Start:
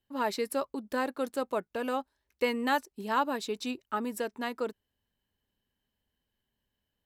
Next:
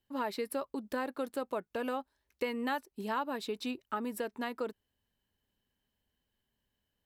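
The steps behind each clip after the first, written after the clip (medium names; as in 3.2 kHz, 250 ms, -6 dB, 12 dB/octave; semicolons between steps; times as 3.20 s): dynamic bell 6.6 kHz, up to -8 dB, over -58 dBFS, Q 1.6; compression 2.5:1, threshold -33 dBFS, peak gain reduction 7.5 dB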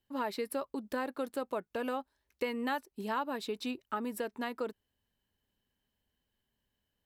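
no audible change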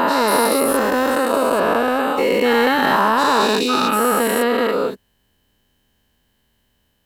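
every event in the spectrogram widened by 480 ms; in parallel at -4 dB: saturation -21.5 dBFS, distortion -17 dB; on the sum: trim +7.5 dB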